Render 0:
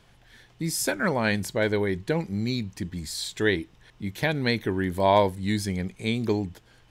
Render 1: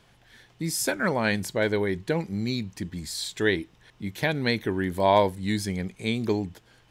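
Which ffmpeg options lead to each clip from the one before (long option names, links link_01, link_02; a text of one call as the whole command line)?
ffmpeg -i in.wav -af "lowshelf=frequency=63:gain=-7.5" out.wav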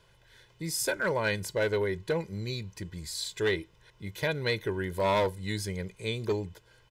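ffmpeg -i in.wav -filter_complex "[0:a]aecho=1:1:2:0.72,acrossover=split=2600[link_01][link_02];[link_01]asoftclip=type=hard:threshold=-17dB[link_03];[link_03][link_02]amix=inputs=2:normalize=0,volume=-5dB" out.wav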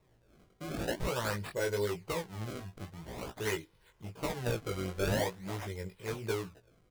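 ffmpeg -i in.wav -af "acrusher=samples=28:mix=1:aa=0.000001:lfo=1:lforange=44.8:lforate=0.47,flanger=delay=16:depth=5.2:speed=0.92,volume=-2dB" out.wav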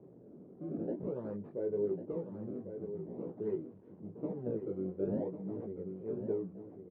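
ffmpeg -i in.wav -filter_complex "[0:a]aeval=exprs='val(0)+0.5*0.00531*sgn(val(0))':channel_layout=same,asuperpass=centerf=280:order=4:qfactor=1,asplit=2[link_01][link_02];[link_02]aecho=0:1:1097:0.355[link_03];[link_01][link_03]amix=inputs=2:normalize=0,volume=1dB" out.wav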